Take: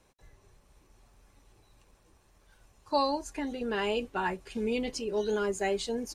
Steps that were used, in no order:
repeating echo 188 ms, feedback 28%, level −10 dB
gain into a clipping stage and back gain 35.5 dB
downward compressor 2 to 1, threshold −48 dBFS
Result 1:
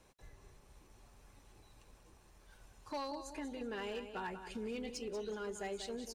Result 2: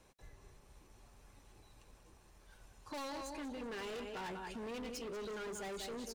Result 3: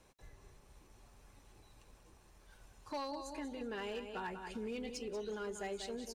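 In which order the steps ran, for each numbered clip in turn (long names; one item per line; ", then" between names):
downward compressor, then repeating echo, then gain into a clipping stage and back
repeating echo, then gain into a clipping stage and back, then downward compressor
repeating echo, then downward compressor, then gain into a clipping stage and back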